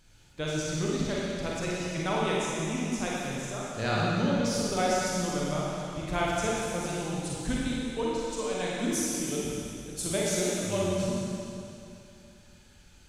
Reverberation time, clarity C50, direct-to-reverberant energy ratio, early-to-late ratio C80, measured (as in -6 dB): 2.7 s, -3.5 dB, -5.5 dB, -1.5 dB